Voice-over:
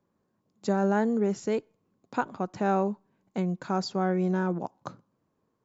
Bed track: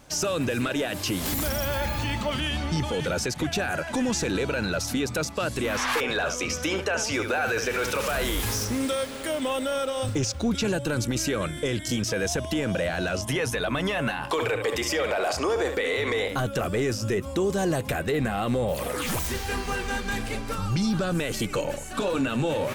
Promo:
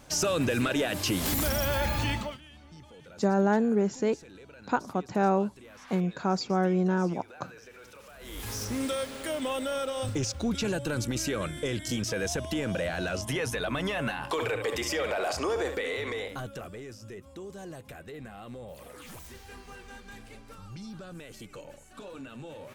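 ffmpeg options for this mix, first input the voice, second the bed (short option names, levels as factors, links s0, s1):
-filter_complex "[0:a]adelay=2550,volume=1.12[s0];[1:a]volume=8.91,afade=t=out:st=2.09:d=0.29:silence=0.0707946,afade=t=in:st=8.19:d=0.6:silence=0.105925,afade=t=out:st=15.57:d=1.24:silence=0.211349[s1];[s0][s1]amix=inputs=2:normalize=0"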